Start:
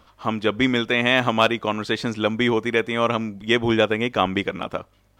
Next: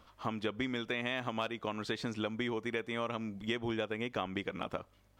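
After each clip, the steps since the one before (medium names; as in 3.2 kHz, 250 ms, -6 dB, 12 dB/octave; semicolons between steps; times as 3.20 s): compression, threshold -26 dBFS, peak gain reduction 13.5 dB; trim -6.5 dB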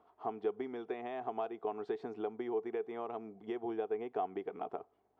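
two resonant band-passes 550 Hz, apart 0.76 oct; trim +7 dB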